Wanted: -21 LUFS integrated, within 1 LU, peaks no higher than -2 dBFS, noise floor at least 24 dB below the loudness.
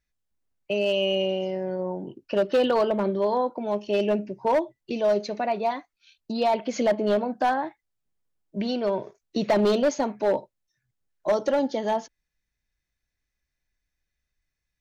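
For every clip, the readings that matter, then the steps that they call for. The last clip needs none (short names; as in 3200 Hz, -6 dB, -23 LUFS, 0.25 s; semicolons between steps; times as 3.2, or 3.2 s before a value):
clipped 1.0%; flat tops at -16.0 dBFS; loudness -25.5 LUFS; peak -16.0 dBFS; loudness target -21.0 LUFS
-> clip repair -16 dBFS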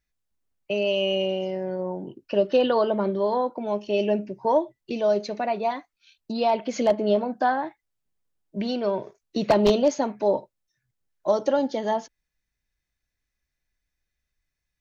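clipped 0.0%; loudness -25.0 LUFS; peak -7.0 dBFS; loudness target -21.0 LUFS
-> gain +4 dB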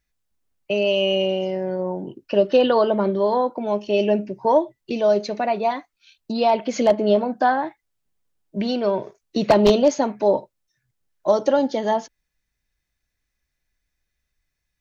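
loudness -21.0 LUFS; peak -3.0 dBFS; noise floor -79 dBFS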